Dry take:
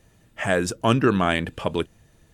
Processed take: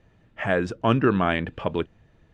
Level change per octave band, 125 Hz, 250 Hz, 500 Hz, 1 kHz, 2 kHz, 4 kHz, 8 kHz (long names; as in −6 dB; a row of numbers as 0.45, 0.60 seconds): −1.0 dB, −1.0 dB, −1.0 dB, −1.0 dB, −1.5 dB, −5.5 dB, below −15 dB